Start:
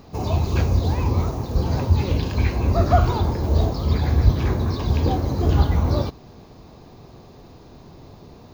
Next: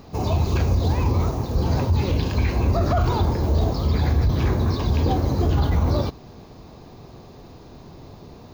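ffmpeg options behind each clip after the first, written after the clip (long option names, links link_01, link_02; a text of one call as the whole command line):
ffmpeg -i in.wav -af "alimiter=limit=-13.5dB:level=0:latency=1:release=27,volume=1.5dB" out.wav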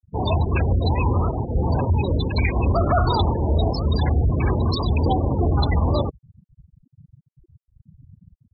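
ffmpeg -i in.wav -af "afftfilt=real='re*gte(hypot(re,im),0.0631)':imag='im*gte(hypot(re,im),0.0631)':win_size=1024:overlap=0.75,crystalizer=i=9.5:c=0" out.wav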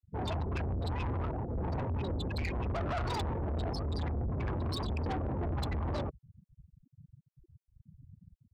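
ffmpeg -i in.wav -af "asoftclip=type=tanh:threshold=-24dB,volume=-7dB" out.wav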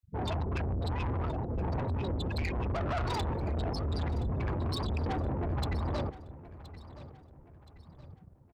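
ffmpeg -i in.wav -af "aecho=1:1:1022|2044|3066|4088:0.15|0.0613|0.0252|0.0103,volume=1.5dB" out.wav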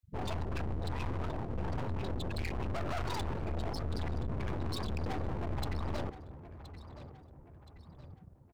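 ffmpeg -i in.wav -af "aeval=exprs='clip(val(0),-1,0.00422)':channel_layout=same" out.wav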